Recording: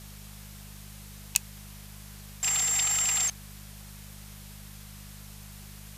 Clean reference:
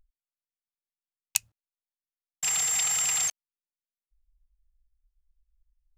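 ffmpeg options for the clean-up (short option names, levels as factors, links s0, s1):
-af "bandreject=f=50.9:t=h:w=4,bandreject=f=101.8:t=h:w=4,bandreject=f=152.7:t=h:w=4,bandreject=f=203.6:t=h:w=4,afftdn=nr=30:nf=-46"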